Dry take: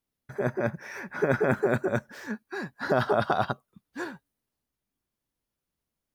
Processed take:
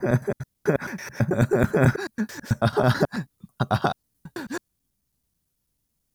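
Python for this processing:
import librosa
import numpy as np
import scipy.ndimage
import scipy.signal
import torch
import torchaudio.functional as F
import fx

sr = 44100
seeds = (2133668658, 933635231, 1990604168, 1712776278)

y = fx.block_reorder(x, sr, ms=109.0, group=6)
y = fx.bass_treble(y, sr, bass_db=10, treble_db=10)
y = y * librosa.db_to_amplitude(2.0)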